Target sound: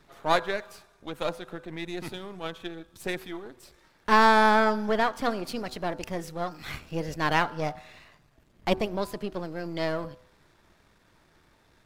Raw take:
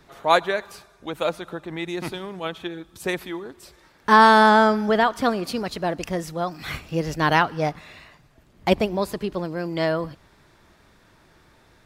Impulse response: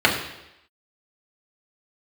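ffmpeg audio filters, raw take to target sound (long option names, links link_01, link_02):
-af "aeval=exprs='if(lt(val(0),0),0.447*val(0),val(0))':channel_layout=same,bandreject=frequency=125.9:width_type=h:width=4,bandreject=frequency=251.8:width_type=h:width=4,bandreject=frequency=377.7:width_type=h:width=4,bandreject=frequency=503.6:width_type=h:width=4,bandreject=frequency=629.5:width_type=h:width=4,bandreject=frequency=755.4:width_type=h:width=4,bandreject=frequency=881.3:width_type=h:width=4,bandreject=frequency=1007.2:width_type=h:width=4,bandreject=frequency=1133.1:width_type=h:width=4,bandreject=frequency=1259:width_type=h:width=4,bandreject=frequency=1384.9:width_type=h:width=4,bandreject=frequency=1510.8:width_type=h:width=4,bandreject=frequency=1636.7:width_type=h:width=4,volume=-3.5dB"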